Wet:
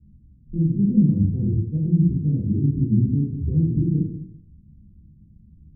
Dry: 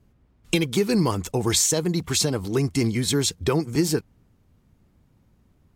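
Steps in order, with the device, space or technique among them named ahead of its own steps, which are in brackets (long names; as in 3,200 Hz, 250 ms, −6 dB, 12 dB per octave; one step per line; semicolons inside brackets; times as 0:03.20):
club heard from the street (brickwall limiter −18 dBFS, peak gain reduction 9.5 dB; low-pass filter 240 Hz 24 dB per octave; convolution reverb RT60 0.60 s, pre-delay 12 ms, DRR −5 dB)
level +3 dB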